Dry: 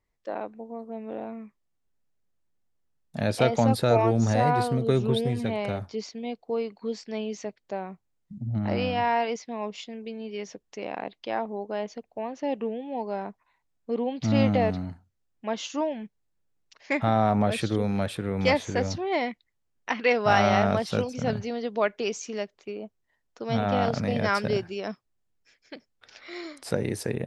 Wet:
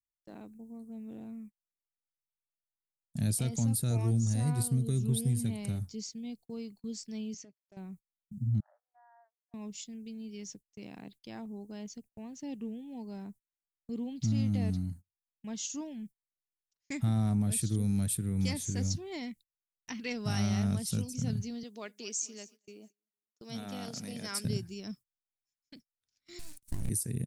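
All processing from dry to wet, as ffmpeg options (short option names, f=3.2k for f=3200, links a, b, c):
-filter_complex "[0:a]asettb=1/sr,asplit=3[a][b][c];[a]atrim=end=7.344[d];[b]atrim=start=7.34:end=7.77,asetpts=PTS-STARTPTS,afade=t=in:d=0.004:c=qsin,afade=t=out:st=0.426:d=0.004:c=qsin,acompressor=threshold=-38dB:ratio=4:attack=3.2:release=140:knee=1:detection=peak,volume=34.5dB,asoftclip=hard,volume=-34.5dB,highpass=190,equalizer=f=210:t=q:w=4:g=-3,equalizer=f=590:t=q:w=4:g=4,equalizer=f=3.8k:t=q:w=4:g=-8,lowpass=f=5.7k:w=0.5412,lowpass=f=5.7k:w=1.3066[e];[c]atrim=start=7.766[f];[d][e]acrossfade=d=0.004:c1=hsin:c2=qsin[g];[g][f]acrossfade=d=0.004:c1=qsin:c2=hsin,asettb=1/sr,asplit=3[h][i][j];[h]atrim=end=8.604[k];[i]atrim=start=8.6:end=9.54,asetpts=PTS-STARTPTS,afade=t=in:d=0.004:c=qsin,afade=t=out:st=0.936:d=0.004:c=qsin,adynamicequalizer=threshold=0.0112:dfrequency=1300:dqfactor=0.8:tfrequency=1300:tqfactor=0.8:attack=5:release=100:ratio=0.375:range=3.5:mode=cutabove:tftype=bell,acompressor=threshold=-35dB:ratio=10:attack=3.2:release=140:knee=1:detection=peak,asuperpass=centerf=1000:order=20:qfactor=0.83[l];[j]atrim=start=9.536[m];[k][l]acrossfade=d=0.004:c1=hsin:c2=qsin[n];[n][m]acrossfade=d=0.004:c1=qsin:c2=hsin,asettb=1/sr,asplit=3[o][p][q];[o]atrim=end=21.634[r];[p]atrim=start=21.63:end=24.45,asetpts=PTS-STARTPTS,afade=t=in:d=0.004:c=qsin,afade=t=out:st=2.816:d=0.004:c=qsin,highpass=350,aecho=1:1:229|458|687:0.112|0.0359|0.0115,atrim=end_sample=124362[s];[q]atrim=start=24.446[t];[r][s]acrossfade=d=0.004:c1=hsin:c2=qsin[u];[u][t]acrossfade=d=0.004:c1=qsin:c2=hsin,asettb=1/sr,asplit=3[v][w][x];[v]atrim=end=26.394[y];[w]atrim=start=26.39:end=26.9,asetpts=PTS-STARTPTS,afade=t=in:d=0.004:c=qsin,afade=t=out:st=0.506:d=0.004:c=qsin,acrossover=split=2800[z][aa];[aa]acompressor=threshold=-53dB:ratio=4:attack=1:release=60[ab];[z][ab]amix=inputs=2:normalize=0,aeval=exprs='abs(val(0))':c=same[ac];[x]atrim=start=26.896[ad];[y][ac]acrossfade=d=0.004:c1=hsin:c2=qsin[ae];[ae][ad]acrossfade=d=0.004:c1=qsin:c2=hsin,agate=range=-27dB:threshold=-44dB:ratio=16:detection=peak,firequalizer=gain_entry='entry(140,0);entry(540,-23);entry(8800,14)':delay=0.05:min_phase=1,alimiter=limit=-22dB:level=0:latency=1:release=162,volume=1dB"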